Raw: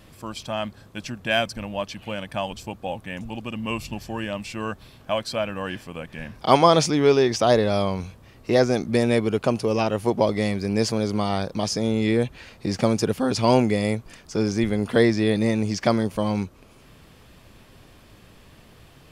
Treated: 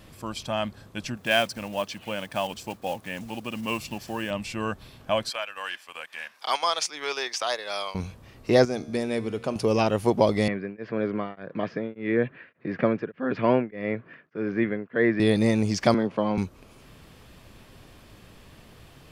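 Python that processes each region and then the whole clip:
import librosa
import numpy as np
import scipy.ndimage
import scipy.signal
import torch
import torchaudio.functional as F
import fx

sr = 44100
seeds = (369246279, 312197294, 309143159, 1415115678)

y = fx.chain(x, sr, fx.block_float(bits=5),
    fx.highpass(hz=200.0, slope=6), at=(1.17, 4.31))
y = fx.chain(y, sr, fx.highpass(hz=1100.0, slope=12),
    fx.transient(attack_db=-4, sustain_db=-8),
    fx.band_squash(depth_pct=40), at=(5.3, 7.95))
y = fx.chain(y, sr, fx.hum_notches(base_hz=60, count=3),
    fx.comb_fb(f0_hz=77.0, decay_s=1.6, harmonics='all', damping=0.0, mix_pct=60), at=(8.65, 9.56))
y = fx.chain(y, sr, fx.cabinet(low_hz=140.0, low_slope=24, high_hz=2400.0, hz=(210.0, 830.0, 1700.0), db=(-4, -9, 8)),
    fx.tremolo_abs(hz=1.7), at=(10.48, 15.2))
y = fx.chain(y, sr, fx.bandpass_edges(low_hz=190.0, high_hz=2500.0),
    fx.band_squash(depth_pct=40), at=(15.94, 16.38))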